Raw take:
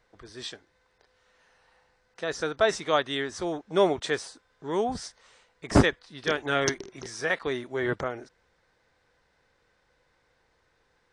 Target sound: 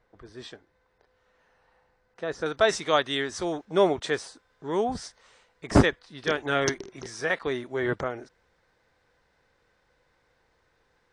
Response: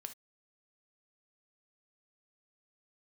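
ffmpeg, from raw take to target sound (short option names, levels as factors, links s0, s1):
-af "asetnsamples=n=441:p=0,asendcmd='2.46 highshelf g 2.5;3.65 highshelf g -2.5',highshelf=f=2300:g=-11.5,volume=1.12"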